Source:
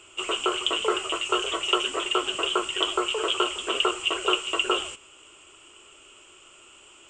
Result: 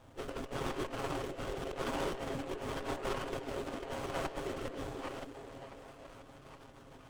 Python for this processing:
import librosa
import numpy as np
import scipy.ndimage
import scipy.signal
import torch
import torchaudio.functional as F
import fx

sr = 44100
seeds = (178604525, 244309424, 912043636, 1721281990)

y = fx.reverse_delay(x, sr, ms=349, wet_db=-12)
y = fx.highpass(y, sr, hz=84.0, slope=6)
y = fx.hum_notches(y, sr, base_hz=50, count=7)
y = fx.spec_gate(y, sr, threshold_db=-10, keep='weak')
y = fx.tilt_eq(y, sr, slope=-3.5)
y = y + 0.72 * np.pad(y, (int(7.4 * sr / 1000.0), 0))[:len(y)]
y = fx.over_compress(y, sr, threshold_db=-36.0, ratio=-0.5)
y = fx.rotary_switch(y, sr, hz=0.9, then_hz=6.7, switch_at_s=5.49)
y = fx.echo_stepped(y, sr, ms=489, hz=360.0, octaves=0.7, feedback_pct=70, wet_db=-6)
y = fx.running_max(y, sr, window=17)
y = y * librosa.db_to_amplitude(1.5)